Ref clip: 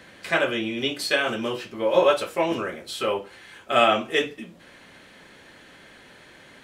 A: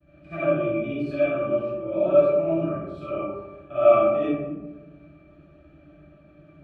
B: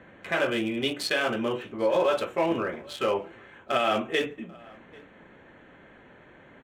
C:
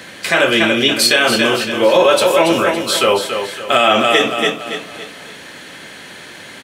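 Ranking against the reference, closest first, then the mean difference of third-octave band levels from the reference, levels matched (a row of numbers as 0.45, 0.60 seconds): B, C, A; 4.0, 6.5, 12.0 decibels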